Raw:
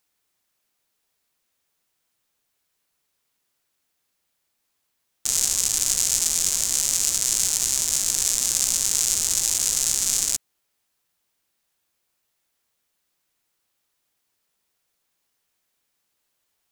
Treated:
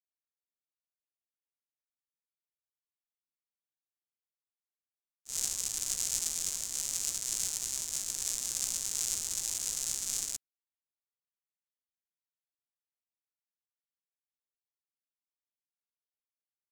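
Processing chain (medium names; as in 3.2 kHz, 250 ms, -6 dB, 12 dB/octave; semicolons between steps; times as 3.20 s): expander -15 dBFS; trim -5.5 dB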